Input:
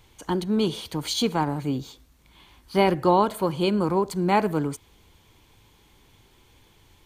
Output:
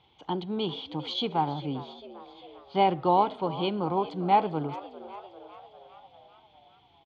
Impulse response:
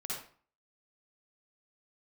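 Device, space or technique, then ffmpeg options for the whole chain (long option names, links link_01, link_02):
frequency-shifting delay pedal into a guitar cabinet: -filter_complex "[0:a]equalizer=frequency=130:width=1.6:gain=4.5,asplit=7[link_01][link_02][link_03][link_04][link_05][link_06][link_07];[link_02]adelay=399,afreqshift=88,volume=-16dB[link_08];[link_03]adelay=798,afreqshift=176,volume=-20.7dB[link_09];[link_04]adelay=1197,afreqshift=264,volume=-25.5dB[link_10];[link_05]adelay=1596,afreqshift=352,volume=-30.2dB[link_11];[link_06]adelay=1995,afreqshift=440,volume=-34.9dB[link_12];[link_07]adelay=2394,afreqshift=528,volume=-39.7dB[link_13];[link_01][link_08][link_09][link_10][link_11][link_12][link_13]amix=inputs=7:normalize=0,highpass=99,equalizer=frequency=110:width_type=q:width=4:gain=-9,equalizer=frequency=220:width_type=q:width=4:gain=-4,equalizer=frequency=790:width_type=q:width=4:gain=10,equalizer=frequency=1700:width_type=q:width=4:gain=-9,equalizer=frequency=3300:width_type=q:width=4:gain=8,lowpass=frequency=3800:width=0.5412,lowpass=frequency=3800:width=1.3066,volume=-6.5dB"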